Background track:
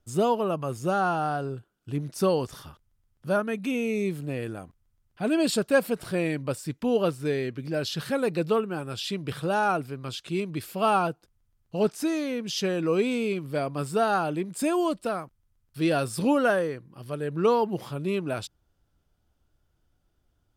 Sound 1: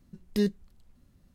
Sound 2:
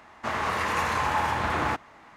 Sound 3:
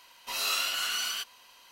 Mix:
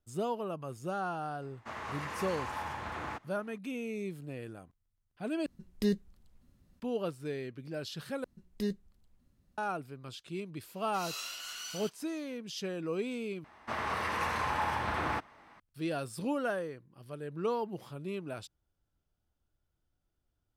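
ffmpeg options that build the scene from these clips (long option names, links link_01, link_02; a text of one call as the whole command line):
ffmpeg -i bed.wav -i cue0.wav -i cue1.wav -i cue2.wav -filter_complex "[2:a]asplit=2[link_01][link_02];[1:a]asplit=2[link_03][link_04];[0:a]volume=-10.5dB[link_05];[3:a]equalizer=frequency=6200:width_type=o:width=0.7:gain=5.5[link_06];[link_02]bandreject=frequency=6900:width=6.3[link_07];[link_05]asplit=4[link_08][link_09][link_10][link_11];[link_08]atrim=end=5.464[link_12];[link_03]atrim=end=1.34,asetpts=PTS-STARTPTS,volume=-3.5dB[link_13];[link_09]atrim=start=6.796:end=8.244[link_14];[link_04]atrim=end=1.34,asetpts=PTS-STARTPTS,volume=-8dB[link_15];[link_10]atrim=start=9.576:end=13.444[link_16];[link_07]atrim=end=2.16,asetpts=PTS-STARTPTS,volume=-6.5dB[link_17];[link_11]atrim=start=15.596[link_18];[link_01]atrim=end=2.16,asetpts=PTS-STARTPTS,volume=-13dB,afade=type=in:duration=0.004:curve=hsin,afade=type=out:start_time=2.156:duration=0.004:curve=hsin,adelay=1420[link_19];[link_06]atrim=end=1.71,asetpts=PTS-STARTPTS,volume=-13dB,afade=type=in:duration=0.004:curve=hsin,afade=type=out:start_time=1.706:duration=0.004:curve=hsin,adelay=470106S[link_20];[link_12][link_13]acrossfade=duration=0.004:curve1=hsin:curve2=hsin[link_21];[link_21][link_14]acrossfade=duration=0.004:curve1=hsin:curve2=hsin[link_22];[link_22][link_15]acrossfade=duration=0.004:curve1=hsin:curve2=hsin[link_23];[link_23][link_16]acrossfade=duration=0.004:curve1=hsin:curve2=hsin[link_24];[link_24][link_17]acrossfade=duration=0.004:curve1=hsin:curve2=hsin[link_25];[link_25][link_18]acrossfade=duration=0.004:curve1=hsin:curve2=hsin[link_26];[link_26][link_19][link_20]amix=inputs=3:normalize=0" out.wav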